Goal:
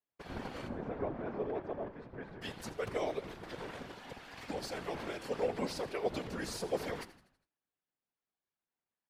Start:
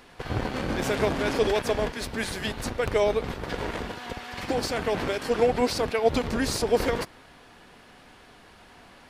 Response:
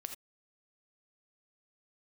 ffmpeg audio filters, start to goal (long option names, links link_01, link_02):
-filter_complex "[0:a]asettb=1/sr,asplit=3[link_01][link_02][link_03];[link_01]atrim=end=0.684[link_04];[link_02]atrim=start=0.68:end=2.42,asetpts=PTS-STARTPTS,afade=type=in:duration=0.004:curve=qsin,afade=type=out:start_time=1.736:duration=0.004:curve=qsin,lowpass=1100[link_05];[link_03]atrim=start=2.416[link_06];[link_04][link_05]acrossfade=duration=0.004:curve1=hsin:curve2=qsin[link_07];[link_07][link_06]acrossfade=duration=0.004:curve1=qsin:curve2=hsin,agate=range=-34dB:threshold=-42dB:ratio=16:detection=peak,highpass=83,afftfilt=real='hypot(re,im)*cos(2*PI*random(0))':imag='hypot(re,im)*sin(2*PI*random(1))':win_size=512:overlap=0.75,asplit=6[link_08][link_09][link_10][link_11][link_12][link_13];[link_09]adelay=81,afreqshift=-81,volume=-16dB[link_14];[link_10]adelay=162,afreqshift=-162,volume=-21.8dB[link_15];[link_11]adelay=243,afreqshift=-243,volume=-27.7dB[link_16];[link_12]adelay=324,afreqshift=-324,volume=-33.5dB[link_17];[link_13]adelay=405,afreqshift=-405,volume=-39.4dB[link_18];[link_08][link_14][link_15][link_16][link_17][link_18]amix=inputs=6:normalize=0,volume=-6.5dB"